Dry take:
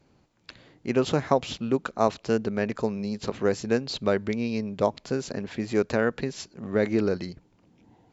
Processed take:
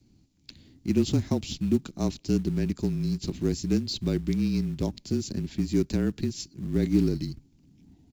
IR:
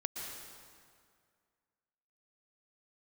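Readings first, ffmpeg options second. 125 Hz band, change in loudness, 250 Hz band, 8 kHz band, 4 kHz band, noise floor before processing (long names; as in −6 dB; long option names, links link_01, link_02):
+6.0 dB, −1.0 dB, +2.5 dB, can't be measured, 0.0 dB, −64 dBFS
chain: -filter_complex "[0:a]firequalizer=gain_entry='entry(340,0);entry(510,-17);entry(800,-17);entry(1300,-21);entry(2300,-11);entry(4700,-1)':delay=0.05:min_phase=1,asplit=2[link_01][link_02];[link_02]acrusher=bits=4:mode=log:mix=0:aa=0.000001,volume=-7dB[link_03];[link_01][link_03]amix=inputs=2:normalize=0,afreqshift=-33"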